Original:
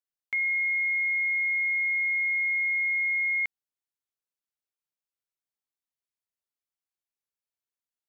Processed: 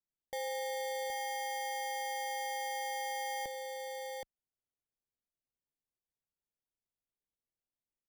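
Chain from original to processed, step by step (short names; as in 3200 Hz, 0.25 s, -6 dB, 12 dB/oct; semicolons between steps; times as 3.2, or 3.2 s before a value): tilt -3 dB/oct; sample-and-hold 33×; echo 0.772 s -4.5 dB; gain -7.5 dB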